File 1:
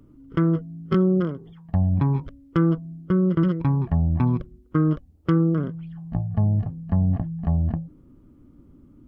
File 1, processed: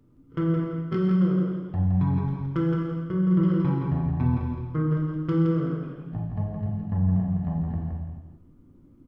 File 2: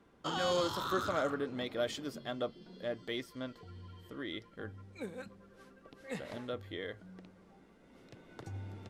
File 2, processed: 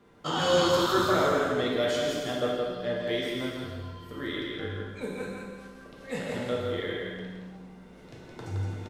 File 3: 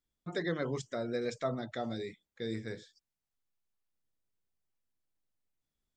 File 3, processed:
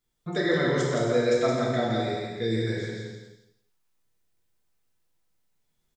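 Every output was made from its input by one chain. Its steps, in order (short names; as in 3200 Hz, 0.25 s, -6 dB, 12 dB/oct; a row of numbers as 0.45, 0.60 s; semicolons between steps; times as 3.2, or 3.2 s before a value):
on a send: feedback echo 0.168 s, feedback 21%, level -5 dB; on the sum: non-linear reverb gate 0.47 s falling, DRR -3.5 dB; normalise peaks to -12 dBFS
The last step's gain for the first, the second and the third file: -9.0, +3.5, +5.0 dB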